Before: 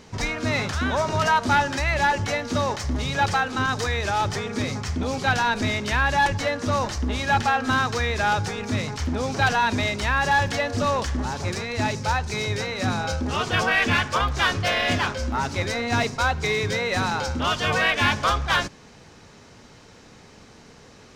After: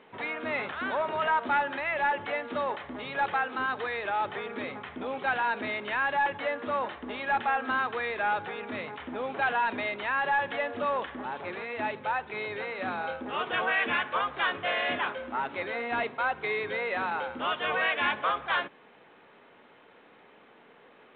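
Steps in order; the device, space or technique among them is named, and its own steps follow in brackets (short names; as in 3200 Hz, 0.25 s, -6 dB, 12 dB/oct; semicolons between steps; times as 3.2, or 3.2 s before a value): telephone (BPF 360–3100 Hz; soft clip -14 dBFS, distortion -20 dB; gain -4 dB; µ-law 64 kbps 8000 Hz)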